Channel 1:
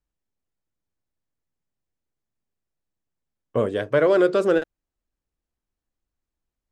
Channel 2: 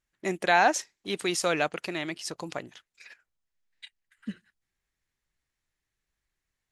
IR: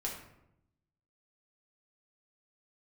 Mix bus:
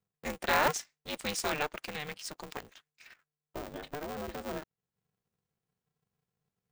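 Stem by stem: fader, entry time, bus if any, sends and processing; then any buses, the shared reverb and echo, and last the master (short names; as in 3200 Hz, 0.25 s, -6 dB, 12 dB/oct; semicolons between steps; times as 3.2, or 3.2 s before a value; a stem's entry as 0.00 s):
-3.0 dB, 0.00 s, no send, compressor 4:1, threshold -24 dBFS, peak gain reduction 9.5 dB; auto duck -11 dB, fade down 0.25 s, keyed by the second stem
-5.0 dB, 0.00 s, no send, gate with hold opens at -50 dBFS; low shelf 280 Hz -7.5 dB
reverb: off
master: polarity switched at an audio rate 150 Hz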